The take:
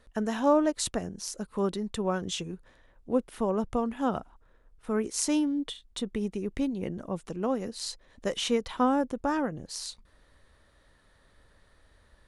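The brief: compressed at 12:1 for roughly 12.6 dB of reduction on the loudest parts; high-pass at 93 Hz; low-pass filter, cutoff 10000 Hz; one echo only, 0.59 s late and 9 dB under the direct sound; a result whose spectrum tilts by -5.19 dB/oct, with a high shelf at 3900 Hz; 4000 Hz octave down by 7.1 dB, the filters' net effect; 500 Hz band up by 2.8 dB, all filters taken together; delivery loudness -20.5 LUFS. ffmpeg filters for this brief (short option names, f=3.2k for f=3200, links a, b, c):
-af "highpass=93,lowpass=10k,equalizer=f=500:t=o:g=3.5,highshelf=f=3.9k:g=-7,equalizer=f=4k:t=o:g=-5,acompressor=threshold=-28dB:ratio=12,aecho=1:1:590:0.355,volume=14.5dB"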